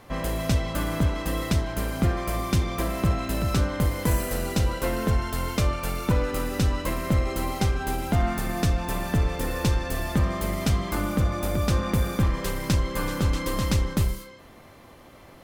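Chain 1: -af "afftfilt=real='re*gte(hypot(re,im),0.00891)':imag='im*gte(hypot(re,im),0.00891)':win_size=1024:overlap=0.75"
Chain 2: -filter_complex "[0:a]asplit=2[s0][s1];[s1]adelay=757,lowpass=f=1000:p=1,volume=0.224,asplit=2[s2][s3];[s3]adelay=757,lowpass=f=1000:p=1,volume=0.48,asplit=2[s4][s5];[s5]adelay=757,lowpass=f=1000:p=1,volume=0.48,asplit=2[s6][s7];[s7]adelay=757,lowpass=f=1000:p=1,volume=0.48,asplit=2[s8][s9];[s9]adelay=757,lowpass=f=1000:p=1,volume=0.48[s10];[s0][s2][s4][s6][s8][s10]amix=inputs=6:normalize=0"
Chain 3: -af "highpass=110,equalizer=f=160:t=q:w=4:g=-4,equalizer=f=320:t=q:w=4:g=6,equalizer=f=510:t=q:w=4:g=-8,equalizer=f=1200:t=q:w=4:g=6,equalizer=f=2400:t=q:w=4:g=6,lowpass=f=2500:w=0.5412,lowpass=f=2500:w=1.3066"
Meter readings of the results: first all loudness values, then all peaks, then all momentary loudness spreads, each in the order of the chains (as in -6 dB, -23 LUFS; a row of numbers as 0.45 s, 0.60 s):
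-26.5 LUFS, -26.0 LUFS, -28.0 LUFS; -12.5 dBFS, -12.0 dBFS, -12.0 dBFS; 4 LU, 4 LU, 3 LU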